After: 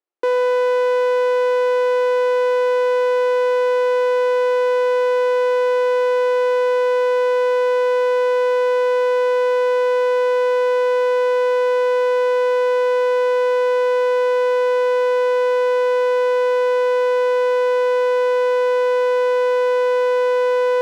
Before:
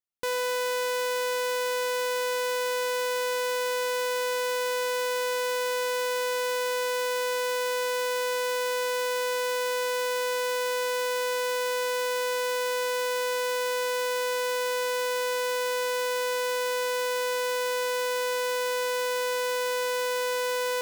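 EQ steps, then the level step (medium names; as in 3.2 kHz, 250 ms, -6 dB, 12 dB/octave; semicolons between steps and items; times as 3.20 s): steep high-pass 320 Hz 48 dB/octave; low-pass 2.8 kHz 6 dB/octave; tilt EQ -4 dB/octave; +9.0 dB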